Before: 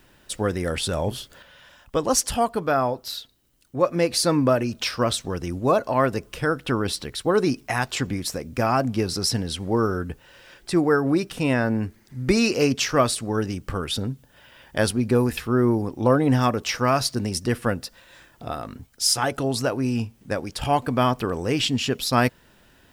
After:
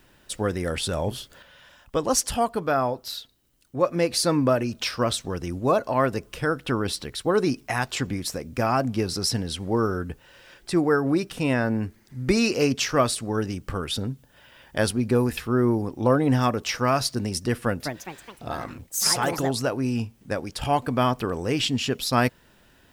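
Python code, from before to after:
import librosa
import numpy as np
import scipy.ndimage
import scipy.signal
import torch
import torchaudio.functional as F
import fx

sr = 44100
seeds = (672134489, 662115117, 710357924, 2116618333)

y = fx.echo_pitch(x, sr, ms=221, semitones=4, count=3, db_per_echo=-6.0, at=(17.58, 19.73))
y = F.gain(torch.from_numpy(y), -1.5).numpy()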